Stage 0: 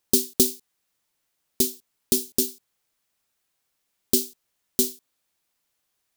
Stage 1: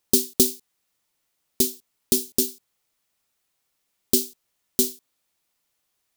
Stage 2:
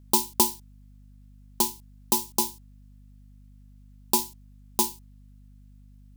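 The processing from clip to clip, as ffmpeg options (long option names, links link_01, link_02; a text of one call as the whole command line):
ffmpeg -i in.wav -af "bandreject=frequency=1600:width=20,volume=1dB" out.wav
ffmpeg -i in.wav -af "aeval=exprs='val(0)*sin(2*PI*610*n/s)':channel_layout=same,aeval=exprs='val(0)+0.00316*(sin(2*PI*50*n/s)+sin(2*PI*2*50*n/s)/2+sin(2*PI*3*50*n/s)/3+sin(2*PI*4*50*n/s)/4+sin(2*PI*5*50*n/s)/5)':channel_layout=same" out.wav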